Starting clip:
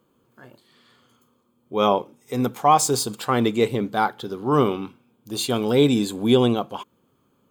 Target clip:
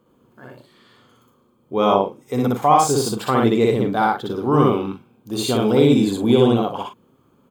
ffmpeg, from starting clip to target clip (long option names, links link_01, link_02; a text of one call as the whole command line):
ffmpeg -i in.wav -filter_complex "[0:a]equalizer=frequency=16000:width_type=o:width=2.6:gain=-6.5,aecho=1:1:61.22|102:1|0.355,asplit=2[link_01][link_02];[link_02]acompressor=threshold=-24dB:ratio=6,volume=-1.5dB[link_03];[link_01][link_03]amix=inputs=2:normalize=0,volume=-1dB" out.wav